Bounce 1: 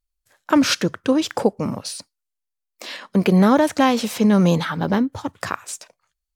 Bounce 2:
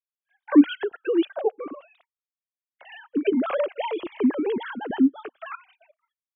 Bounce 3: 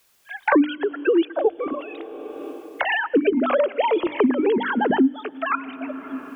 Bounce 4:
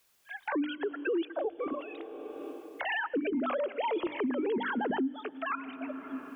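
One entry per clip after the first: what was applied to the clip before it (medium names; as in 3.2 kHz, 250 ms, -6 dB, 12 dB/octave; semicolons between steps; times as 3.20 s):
formants replaced by sine waves; Shepard-style phaser falling 0.51 Hz; trim -4 dB
hum notches 50/100/150/200/250/300 Hz; on a send at -23 dB: reverberation RT60 2.3 s, pre-delay 91 ms; on the sum: three bands compressed up and down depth 100%; trim +4.5 dB
peak limiter -17 dBFS, peak gain reduction 11 dB; trim -7.5 dB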